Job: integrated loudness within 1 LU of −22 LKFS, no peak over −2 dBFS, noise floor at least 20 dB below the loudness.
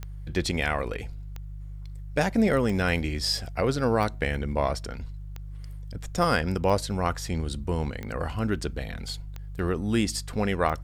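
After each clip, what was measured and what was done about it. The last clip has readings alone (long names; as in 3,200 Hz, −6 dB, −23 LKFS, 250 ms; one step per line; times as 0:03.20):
number of clicks 9; mains hum 50 Hz; hum harmonics up to 150 Hz; level of the hum −36 dBFS; integrated loudness −27.5 LKFS; sample peak −9.5 dBFS; target loudness −22.0 LKFS
→ click removal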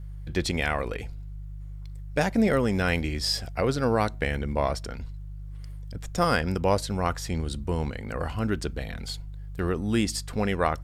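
number of clicks 0; mains hum 50 Hz; hum harmonics up to 150 Hz; level of the hum −36 dBFS
→ hum removal 50 Hz, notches 3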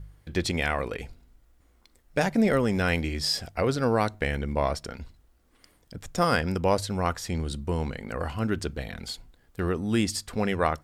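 mains hum none found; integrated loudness −27.5 LKFS; sample peak −9.5 dBFS; target loudness −22.0 LKFS
→ level +5.5 dB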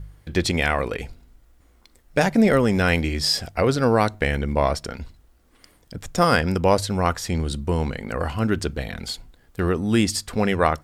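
integrated loudness −22.0 LKFS; sample peak −4.0 dBFS; background noise floor −58 dBFS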